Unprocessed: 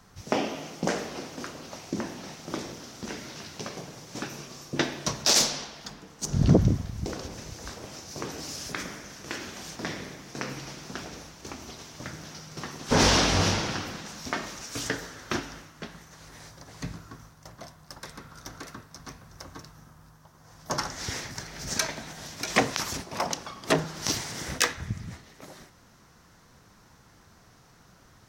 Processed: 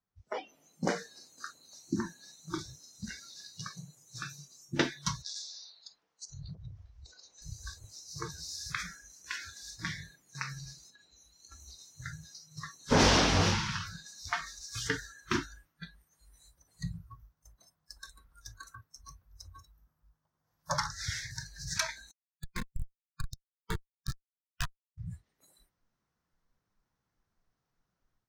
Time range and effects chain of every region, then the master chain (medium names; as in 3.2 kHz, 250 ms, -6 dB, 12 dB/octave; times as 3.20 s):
5.22–7.42 s: three-band isolator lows -15 dB, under 460 Hz, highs -17 dB, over 7.7 kHz + compression 3:1, threshold -39 dBFS
10.88–11.52 s: peaking EQ 3.8 kHz +4 dB 1.7 oct + compression 4:1, threshold -43 dBFS
22.11–24.98 s: treble shelf 4.6 kHz +4 dB + Schmitt trigger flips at -17.5 dBFS + tape noise reduction on one side only encoder only
whole clip: level rider gain up to 8.5 dB; spectral noise reduction 27 dB; treble shelf 9.3 kHz -11 dB; trim -8.5 dB